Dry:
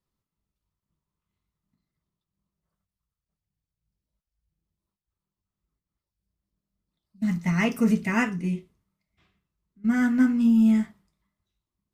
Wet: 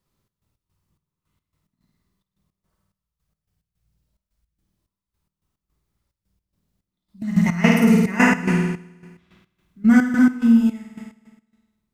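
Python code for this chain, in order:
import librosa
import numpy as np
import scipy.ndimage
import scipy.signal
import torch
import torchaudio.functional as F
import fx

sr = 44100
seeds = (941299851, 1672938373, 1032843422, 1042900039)

y = fx.room_flutter(x, sr, wall_m=8.9, rt60_s=1.2)
y = fx.step_gate(y, sr, bpm=108, pattern='xx.x.xx..x.x.x', floor_db=-12.0, edge_ms=4.5)
y = fx.rider(y, sr, range_db=5, speed_s=0.5)
y = y * librosa.db_to_amplitude(5.5)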